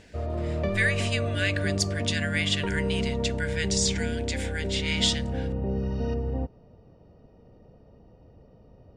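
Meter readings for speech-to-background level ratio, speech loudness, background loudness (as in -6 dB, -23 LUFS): 1.0 dB, -29.0 LUFS, -30.0 LUFS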